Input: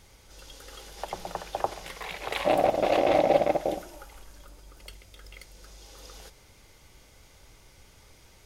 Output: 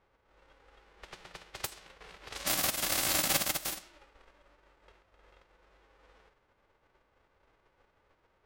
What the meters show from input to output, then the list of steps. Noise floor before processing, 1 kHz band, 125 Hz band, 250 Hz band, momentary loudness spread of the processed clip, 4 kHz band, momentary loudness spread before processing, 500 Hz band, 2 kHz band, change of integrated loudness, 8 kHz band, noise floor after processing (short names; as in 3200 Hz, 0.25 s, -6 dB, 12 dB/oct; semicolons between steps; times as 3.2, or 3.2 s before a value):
-56 dBFS, -13.0 dB, -6.0 dB, -11.5 dB, 20 LU, +4.0 dB, 23 LU, -19.5 dB, -1.5 dB, -3.5 dB, +12.5 dB, -73 dBFS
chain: spectral whitening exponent 0.1; low-pass opened by the level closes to 1200 Hz, open at -24 dBFS; gain -7 dB